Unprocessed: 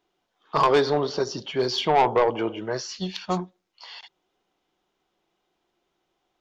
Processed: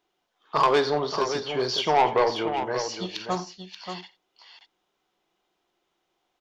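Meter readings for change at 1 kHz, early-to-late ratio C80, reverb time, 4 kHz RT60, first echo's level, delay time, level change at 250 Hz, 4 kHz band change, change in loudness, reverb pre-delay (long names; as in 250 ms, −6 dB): 0.0 dB, no reverb audible, no reverb audible, no reverb audible, −13.5 dB, 47 ms, −3.0 dB, +0.5 dB, −1.0 dB, no reverb audible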